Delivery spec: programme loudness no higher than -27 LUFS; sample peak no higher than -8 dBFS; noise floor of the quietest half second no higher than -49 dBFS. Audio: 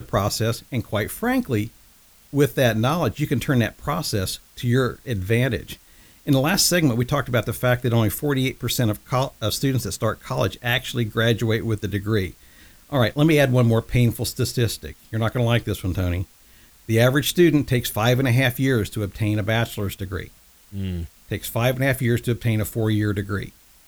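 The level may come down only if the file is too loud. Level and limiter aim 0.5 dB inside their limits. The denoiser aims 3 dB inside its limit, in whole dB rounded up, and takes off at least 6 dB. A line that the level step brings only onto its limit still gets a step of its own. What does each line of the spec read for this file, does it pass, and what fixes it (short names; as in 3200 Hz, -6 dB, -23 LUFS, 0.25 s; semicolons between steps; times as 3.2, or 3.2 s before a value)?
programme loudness -22.0 LUFS: fail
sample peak -5.0 dBFS: fail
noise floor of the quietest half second -53 dBFS: OK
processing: gain -5.5 dB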